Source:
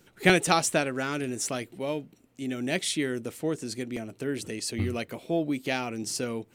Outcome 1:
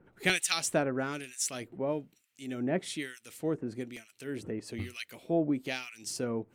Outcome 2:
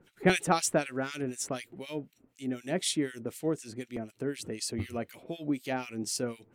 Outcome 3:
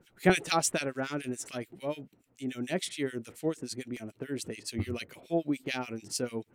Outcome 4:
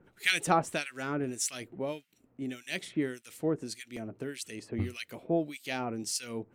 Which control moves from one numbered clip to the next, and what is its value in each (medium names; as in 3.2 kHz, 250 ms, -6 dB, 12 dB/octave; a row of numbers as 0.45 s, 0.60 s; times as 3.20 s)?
harmonic tremolo, rate: 1.1 Hz, 4 Hz, 6.9 Hz, 1.7 Hz